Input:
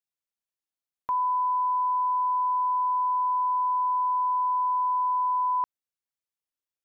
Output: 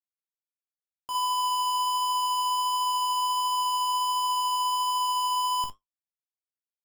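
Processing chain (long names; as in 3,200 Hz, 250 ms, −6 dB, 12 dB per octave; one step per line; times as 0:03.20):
comparator with hysteresis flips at −50 dBFS
flanger 1.4 Hz, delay 9.6 ms, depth 4.7 ms, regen −65%
ambience of single reflections 18 ms −8.5 dB, 48 ms −10.5 dB, 59 ms −6.5 dB
level −1.5 dB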